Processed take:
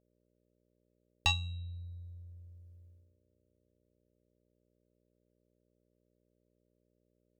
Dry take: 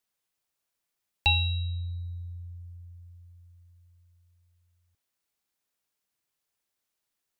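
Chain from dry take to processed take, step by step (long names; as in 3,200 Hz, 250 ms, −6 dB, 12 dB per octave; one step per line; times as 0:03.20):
harmonic generator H 2 −8 dB, 3 −15 dB, 5 −22 dB, 7 −30 dB, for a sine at −9.5 dBFS
reverb reduction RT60 0.63 s
noise gate −55 dBFS, range −18 dB
hum with harmonics 60 Hz, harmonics 10, −73 dBFS −1 dB per octave
level −4 dB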